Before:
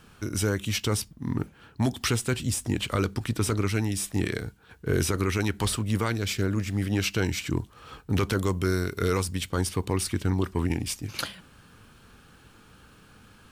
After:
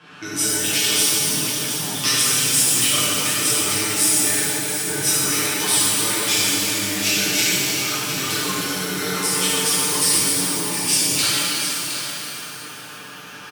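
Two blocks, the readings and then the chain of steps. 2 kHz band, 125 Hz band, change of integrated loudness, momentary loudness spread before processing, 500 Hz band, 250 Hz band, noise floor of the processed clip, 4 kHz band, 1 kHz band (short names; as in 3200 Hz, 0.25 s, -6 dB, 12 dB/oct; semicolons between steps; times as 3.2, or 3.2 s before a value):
+10.5 dB, -6.0 dB, +10.5 dB, 6 LU, +1.0 dB, +0.5 dB, -37 dBFS, +15.5 dB, +7.5 dB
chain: low-pass opened by the level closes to 2500 Hz, open at -24.5 dBFS; limiter -18.5 dBFS, peak gain reduction 5 dB; compressor, threshold -35 dBFS, peak gain reduction 11.5 dB; HPF 120 Hz 24 dB/oct; tilt +3 dB/oct; comb 6.7 ms, depth 67%; echo 0.716 s -9.5 dB; shimmer reverb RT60 2.9 s, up +12 st, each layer -8 dB, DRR -11 dB; gain +4.5 dB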